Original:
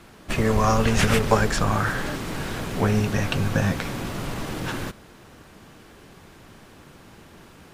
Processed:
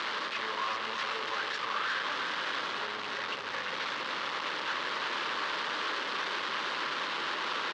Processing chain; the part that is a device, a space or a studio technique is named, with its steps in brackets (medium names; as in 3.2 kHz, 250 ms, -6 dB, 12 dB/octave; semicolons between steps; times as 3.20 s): home computer beeper (one-bit comparator; cabinet simulation 720–4100 Hz, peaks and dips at 720 Hz -10 dB, 1.1 kHz +3 dB, 2.4 kHz -4 dB); delay 356 ms -5.5 dB; trim -4 dB